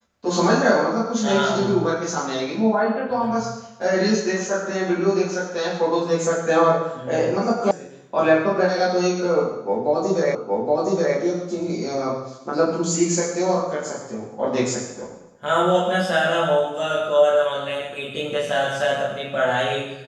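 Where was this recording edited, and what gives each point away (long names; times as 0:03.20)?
0:07.71: cut off before it has died away
0:10.35: the same again, the last 0.82 s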